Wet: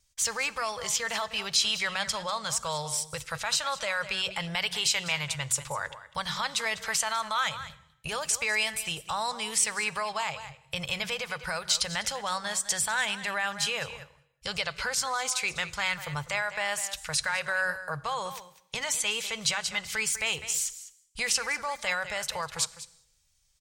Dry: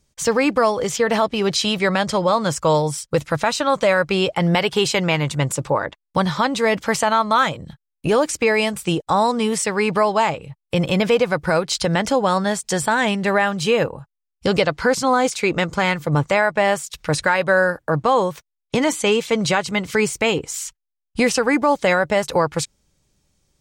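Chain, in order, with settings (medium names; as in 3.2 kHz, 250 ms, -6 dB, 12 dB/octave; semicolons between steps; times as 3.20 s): delay 200 ms -15.5 dB; peak limiter -11 dBFS, peak gain reduction 6 dB; amplifier tone stack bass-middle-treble 10-0-10; de-hum 62.48 Hz, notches 6; on a send at -19 dB: reverberation, pre-delay 3 ms; on the sum: wow and flutter 25 cents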